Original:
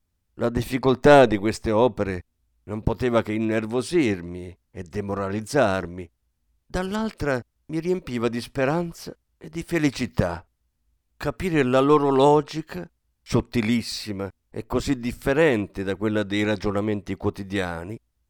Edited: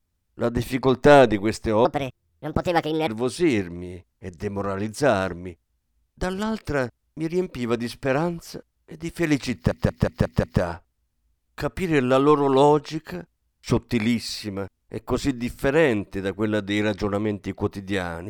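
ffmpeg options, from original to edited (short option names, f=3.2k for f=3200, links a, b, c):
-filter_complex "[0:a]asplit=8[a][b][c][d][e][f][g][h];[a]atrim=end=1.854[i];[b]atrim=start=1.85:end=3.6,asetpts=PTS-STARTPTS,asetrate=63063,aresample=44100[j];[c]atrim=start=3.596:end=10.242[k];[d]atrim=start=10.058:end=10.242[l];[e]atrim=start=10.058:end=10.242[m];[f]atrim=start=10.058:end=10.242[n];[g]atrim=start=10.058:end=10.242[o];[h]atrim=start=10.058[p];[i][j]acrossfade=d=0.004:c1=hsin:c2=hsin[q];[q][k]acrossfade=d=0.004:c1=hsin:c2=hsin[r];[r][l]acrossfade=d=0.004:c1=hsin:c2=hsin[s];[s][m]acrossfade=d=0.004:c1=hsin:c2=hsin[t];[t][n]acrossfade=d=0.004:c1=hsin:c2=hsin[u];[u][o]acrossfade=d=0.004:c1=hsin:c2=hsin[v];[v][p]acrossfade=d=0.004:c1=hsin:c2=hsin"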